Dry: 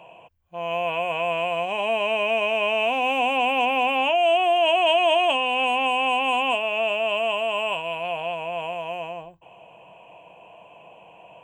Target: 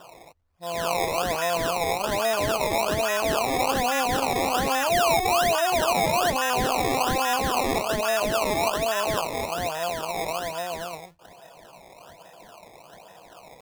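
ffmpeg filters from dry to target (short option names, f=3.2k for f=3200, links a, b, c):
-af "atempo=0.84,alimiter=limit=-14.5dB:level=0:latency=1:release=140,acrusher=samples=20:mix=1:aa=0.000001:lfo=1:lforange=20:lforate=1.2"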